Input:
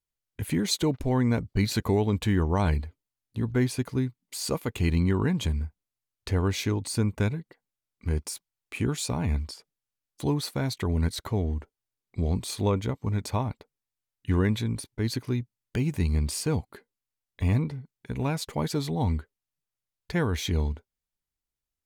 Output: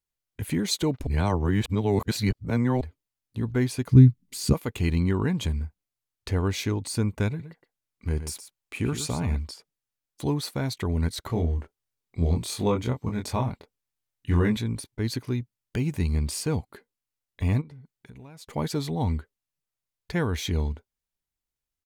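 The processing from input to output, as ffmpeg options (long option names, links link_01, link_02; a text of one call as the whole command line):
ffmpeg -i in.wav -filter_complex "[0:a]asplit=3[link_01][link_02][link_03];[link_01]afade=type=out:start_time=3.9:duration=0.02[link_04];[link_02]asubboost=boost=11.5:cutoff=210,afade=type=in:start_time=3.9:duration=0.02,afade=type=out:start_time=4.52:duration=0.02[link_05];[link_03]afade=type=in:start_time=4.52:duration=0.02[link_06];[link_04][link_05][link_06]amix=inputs=3:normalize=0,asplit=3[link_07][link_08][link_09];[link_07]afade=type=out:start_time=7.39:duration=0.02[link_10];[link_08]aecho=1:1:118:0.299,afade=type=in:start_time=7.39:duration=0.02,afade=type=out:start_time=9.35:duration=0.02[link_11];[link_09]afade=type=in:start_time=9.35:duration=0.02[link_12];[link_10][link_11][link_12]amix=inputs=3:normalize=0,asettb=1/sr,asplit=3[link_13][link_14][link_15];[link_13]atrim=end=11.274[link_16];[link_14]atrim=start=11.27:end=14.57,asetpts=PTS-STARTPTS,afade=type=in:duration=0.004:curve=qsin,afade=type=out:start_time=3.296:duration=0.004:curve=qsin,asplit=2[link_17][link_18];[link_18]adelay=24,volume=-3.5dB[link_19];[link_17][link_19]amix=inputs=2:normalize=0,atrim=end_sample=145530[link_20];[link_15]atrim=start=14.566[link_21];[link_16][link_20]acrossfade=duration=0.004:curve1=hsin:curve2=qsin[link_22];[link_22][link_21]acrossfade=duration=0.004:curve1=qsin:curve2=hsin,asplit=3[link_23][link_24][link_25];[link_23]afade=type=out:start_time=17.6:duration=0.02[link_26];[link_24]acompressor=threshold=-42dB:ratio=8:attack=3.2:release=140:knee=1:detection=peak,afade=type=in:start_time=17.6:duration=0.02,afade=type=out:start_time=18.49:duration=0.02[link_27];[link_25]afade=type=in:start_time=18.49:duration=0.02[link_28];[link_26][link_27][link_28]amix=inputs=3:normalize=0,asplit=3[link_29][link_30][link_31];[link_29]atrim=end=1.072[link_32];[link_30]atrim=start=1.068:end=2.812,asetpts=PTS-STARTPTS,areverse[link_33];[link_31]atrim=start=2.808[link_34];[link_32][link_33]acrossfade=duration=0.004:curve1=hsin:curve2=hsin[link_35];[link_35][link_34]acrossfade=duration=0.004:curve1=hsin:curve2=hsin" out.wav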